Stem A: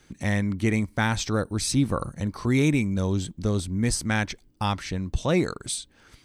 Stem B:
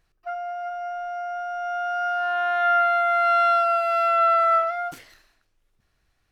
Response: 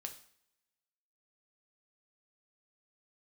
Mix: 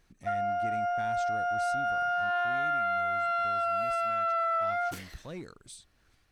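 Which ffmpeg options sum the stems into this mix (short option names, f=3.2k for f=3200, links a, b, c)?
-filter_complex "[0:a]aeval=exprs='0.299*(cos(1*acos(clip(val(0)/0.299,-1,1)))-cos(1*PI/2))+0.0211*(cos(5*acos(clip(val(0)/0.299,-1,1)))-cos(5*PI/2))':c=same,volume=-20dB[a];[1:a]alimiter=limit=-16.5dB:level=0:latency=1,volume=1dB[b];[a][b]amix=inputs=2:normalize=0,alimiter=limit=-23dB:level=0:latency=1:release=69"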